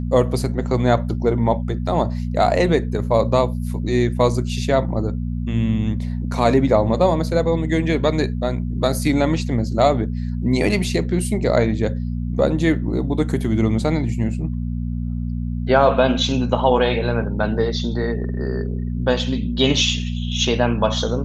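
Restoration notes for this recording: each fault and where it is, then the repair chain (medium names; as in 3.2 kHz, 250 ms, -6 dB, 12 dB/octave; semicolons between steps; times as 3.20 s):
hum 60 Hz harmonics 4 -24 dBFS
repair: de-hum 60 Hz, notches 4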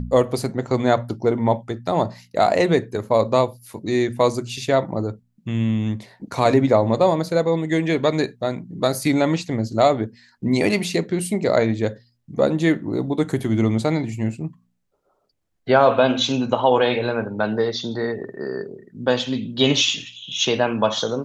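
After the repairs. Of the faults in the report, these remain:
nothing left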